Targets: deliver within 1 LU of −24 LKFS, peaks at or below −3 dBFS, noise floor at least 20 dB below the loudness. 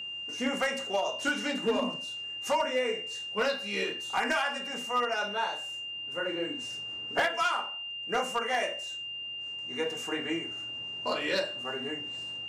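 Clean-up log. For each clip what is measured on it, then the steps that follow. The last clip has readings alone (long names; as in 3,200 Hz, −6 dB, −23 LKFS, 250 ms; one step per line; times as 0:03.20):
share of clipped samples 0.4%; peaks flattened at −21.0 dBFS; interfering tone 2,800 Hz; level of the tone −36 dBFS; integrated loudness −31.5 LKFS; sample peak −21.0 dBFS; target loudness −24.0 LKFS
→ clipped peaks rebuilt −21 dBFS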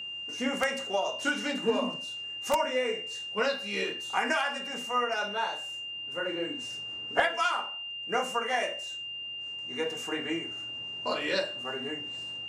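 share of clipped samples 0.0%; interfering tone 2,800 Hz; level of the tone −36 dBFS
→ notch filter 2,800 Hz, Q 30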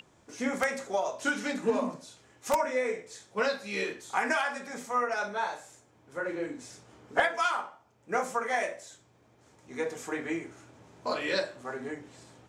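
interfering tone none found; integrated loudness −31.5 LKFS; sample peak −11.5 dBFS; target loudness −24.0 LKFS
→ level +7.5 dB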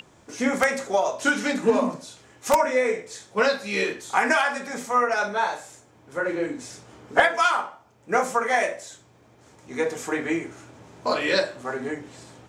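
integrated loudness −24.0 LKFS; sample peak −4.0 dBFS; background noise floor −56 dBFS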